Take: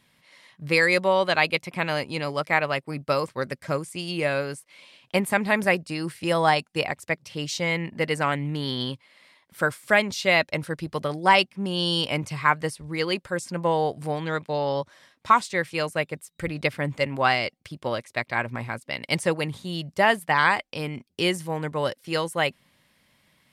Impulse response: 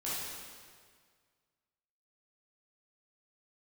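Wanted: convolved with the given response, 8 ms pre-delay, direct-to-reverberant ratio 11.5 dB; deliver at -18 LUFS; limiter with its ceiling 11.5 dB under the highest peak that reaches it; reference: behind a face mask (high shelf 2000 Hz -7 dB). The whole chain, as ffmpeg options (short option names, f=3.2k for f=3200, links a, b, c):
-filter_complex "[0:a]alimiter=limit=-17dB:level=0:latency=1,asplit=2[a][b];[1:a]atrim=start_sample=2205,adelay=8[c];[b][c]afir=irnorm=-1:irlink=0,volume=-16dB[d];[a][d]amix=inputs=2:normalize=0,highshelf=f=2k:g=-7,volume=12.5dB"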